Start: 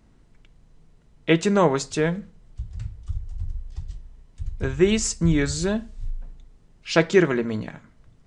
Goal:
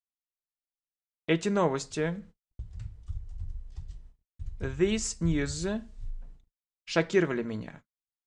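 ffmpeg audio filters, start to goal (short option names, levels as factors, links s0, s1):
-af "agate=range=0.00178:threshold=0.00891:ratio=16:detection=peak,volume=0.422"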